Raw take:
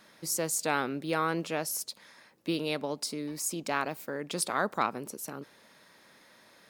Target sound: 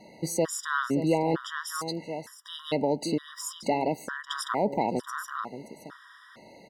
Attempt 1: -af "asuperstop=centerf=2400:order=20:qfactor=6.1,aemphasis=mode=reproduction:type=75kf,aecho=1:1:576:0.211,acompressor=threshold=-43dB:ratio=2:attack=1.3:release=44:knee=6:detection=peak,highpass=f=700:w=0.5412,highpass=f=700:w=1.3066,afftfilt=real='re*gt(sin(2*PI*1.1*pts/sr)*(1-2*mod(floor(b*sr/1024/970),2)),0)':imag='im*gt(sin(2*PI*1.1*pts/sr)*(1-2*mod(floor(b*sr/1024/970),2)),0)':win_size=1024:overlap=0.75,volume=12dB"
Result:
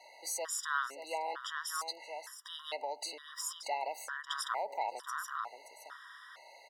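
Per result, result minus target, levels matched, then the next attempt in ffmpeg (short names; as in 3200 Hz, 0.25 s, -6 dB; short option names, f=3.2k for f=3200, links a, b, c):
500 Hz band -5.0 dB; compressor: peak gain reduction +5 dB
-af "asuperstop=centerf=2400:order=20:qfactor=6.1,aemphasis=mode=reproduction:type=75kf,aecho=1:1:576:0.211,acompressor=threshold=-43dB:ratio=2:attack=1.3:release=44:knee=6:detection=peak,afftfilt=real='re*gt(sin(2*PI*1.1*pts/sr)*(1-2*mod(floor(b*sr/1024/970),2)),0)':imag='im*gt(sin(2*PI*1.1*pts/sr)*(1-2*mod(floor(b*sr/1024/970),2)),0)':win_size=1024:overlap=0.75,volume=12dB"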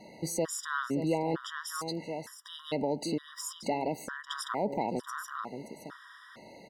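compressor: peak gain reduction +5 dB
-af "asuperstop=centerf=2400:order=20:qfactor=6.1,aemphasis=mode=reproduction:type=75kf,aecho=1:1:576:0.211,acompressor=threshold=-33dB:ratio=2:attack=1.3:release=44:knee=6:detection=peak,afftfilt=real='re*gt(sin(2*PI*1.1*pts/sr)*(1-2*mod(floor(b*sr/1024/970),2)),0)':imag='im*gt(sin(2*PI*1.1*pts/sr)*(1-2*mod(floor(b*sr/1024/970),2)),0)':win_size=1024:overlap=0.75,volume=12dB"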